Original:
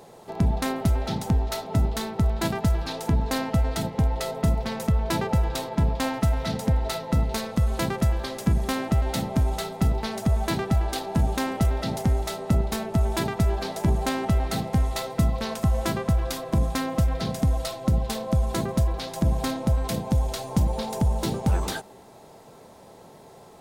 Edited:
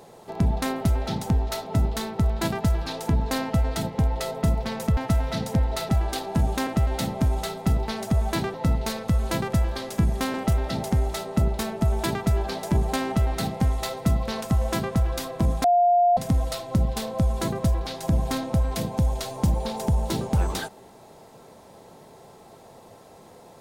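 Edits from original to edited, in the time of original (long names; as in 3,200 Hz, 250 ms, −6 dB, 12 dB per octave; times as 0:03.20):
0:04.97–0:06.10: remove
0:07.02–0:08.82: swap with 0:10.69–0:11.47
0:16.77–0:17.30: beep over 704 Hz −15 dBFS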